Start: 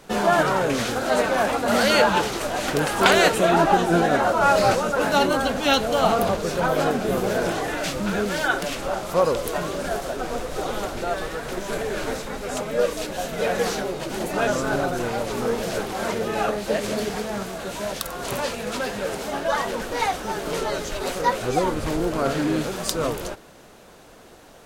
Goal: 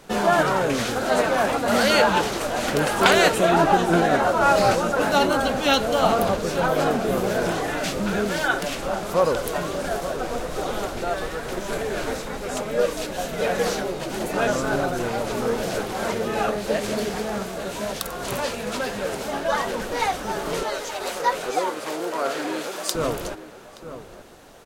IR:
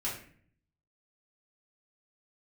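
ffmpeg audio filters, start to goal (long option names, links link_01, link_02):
-filter_complex "[0:a]asettb=1/sr,asplit=3[link_01][link_02][link_03];[link_01]atrim=end=20.634[link_04];[link_02]atrim=start=20.63:end=22.95,asetpts=PTS-STARTPTS,afade=type=in:duration=0.004:curve=qsin,afade=type=out:start_time=2.316:duration=0.004:curve=qsin,highpass=450[link_05];[link_03]atrim=start=22.946[link_06];[link_04][link_05]acrossfade=duration=0.004:curve1=hsin:curve2=qsin[link_07];[link_07][link_06]acrossfade=duration=0.004:curve1=qsin:curve2=hsin,asplit=2[link_08][link_09];[link_09]adelay=874.6,volume=-12dB,highshelf=frequency=4000:gain=-19.7[link_10];[link_08][link_10]amix=inputs=2:normalize=0"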